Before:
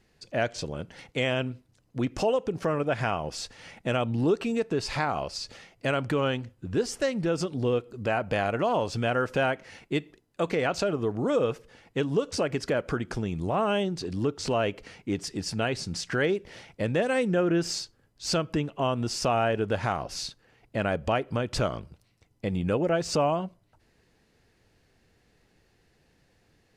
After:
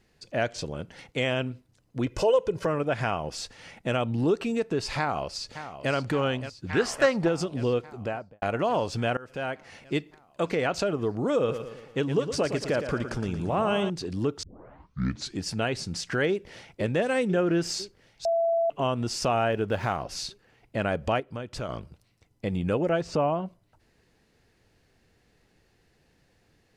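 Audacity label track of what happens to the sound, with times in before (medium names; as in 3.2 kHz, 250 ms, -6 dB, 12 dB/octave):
2.060000	2.660000	comb 2 ms, depth 70%
4.980000	5.920000	echo throw 570 ms, feedback 75%, level -11.5 dB
6.670000	7.270000	peaking EQ 2.3 kHz -> 780 Hz +13 dB 1.7 oct
7.890000	8.420000	studio fade out
9.170000	9.800000	fade in linear, from -22.5 dB
11.370000	13.900000	feedback delay 114 ms, feedback 50%, level -9 dB
14.430000	14.430000	tape start 0.99 s
16.290000	16.720000	echo throw 500 ms, feedback 70%, level -9.5 dB
18.250000	18.700000	bleep 669 Hz -21 dBFS
19.520000	20.040000	median filter over 5 samples
21.200000	21.690000	gain -7.5 dB
23.010000	23.460000	low-pass 1.8 kHz 6 dB/octave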